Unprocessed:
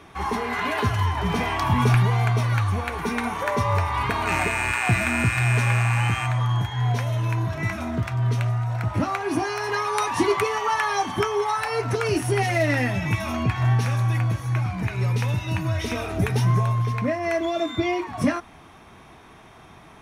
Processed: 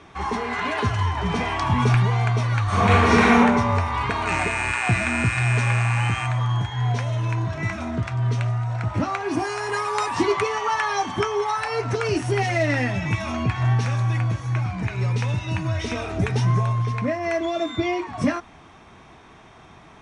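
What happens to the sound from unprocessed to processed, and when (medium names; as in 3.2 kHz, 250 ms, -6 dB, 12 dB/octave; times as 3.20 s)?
2.65–3.35 s: reverb throw, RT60 1.3 s, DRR -11.5 dB
9.36–10.21 s: careless resampling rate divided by 4×, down none, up hold
whole clip: steep low-pass 8.8 kHz 48 dB/octave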